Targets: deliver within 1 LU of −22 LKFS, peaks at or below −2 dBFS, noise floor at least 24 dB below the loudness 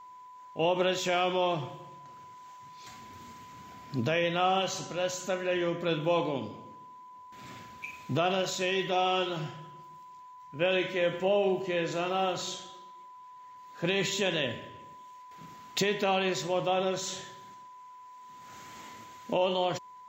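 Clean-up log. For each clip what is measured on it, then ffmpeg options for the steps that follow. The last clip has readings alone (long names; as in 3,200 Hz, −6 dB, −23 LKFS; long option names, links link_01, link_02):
interfering tone 1,000 Hz; level of the tone −47 dBFS; integrated loudness −29.5 LKFS; sample peak −15.5 dBFS; target loudness −22.0 LKFS
→ -af "bandreject=frequency=1000:width=30"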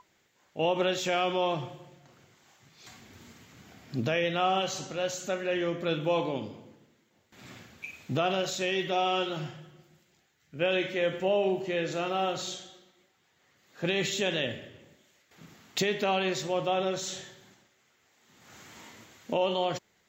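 interfering tone none found; integrated loudness −30.0 LKFS; sample peak −15.5 dBFS; target loudness −22.0 LKFS
→ -af "volume=8dB"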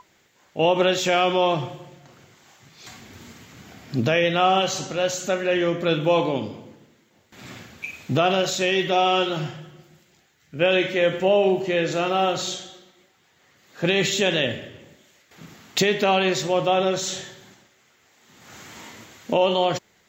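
integrated loudness −22.0 LKFS; sample peak −7.5 dBFS; background noise floor −61 dBFS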